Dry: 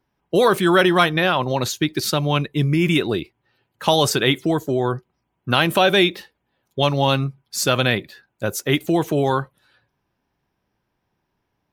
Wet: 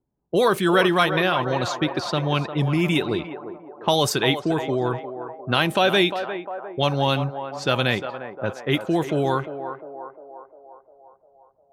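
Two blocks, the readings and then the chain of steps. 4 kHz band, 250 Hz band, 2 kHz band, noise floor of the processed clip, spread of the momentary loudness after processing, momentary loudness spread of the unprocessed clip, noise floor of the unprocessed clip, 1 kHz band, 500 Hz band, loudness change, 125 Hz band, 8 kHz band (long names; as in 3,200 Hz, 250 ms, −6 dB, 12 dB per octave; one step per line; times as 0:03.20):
−3.0 dB, −3.0 dB, −2.5 dB, −60 dBFS, 15 LU, 10 LU, −75 dBFS, −2.0 dB, −2.5 dB, −3.0 dB, −3.0 dB, −7.0 dB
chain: feedback echo with a band-pass in the loop 352 ms, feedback 71%, band-pass 810 Hz, level −7.5 dB
low-pass that shuts in the quiet parts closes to 560 Hz, open at −14 dBFS
level −3 dB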